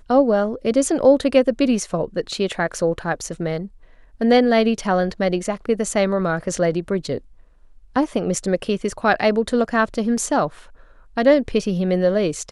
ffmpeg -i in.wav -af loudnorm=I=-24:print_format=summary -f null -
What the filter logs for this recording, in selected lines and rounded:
Input Integrated:    -20.2 LUFS
Input True Peak:      -2.7 dBTP
Input LRA:             3.0 LU
Input Threshold:     -30.6 LUFS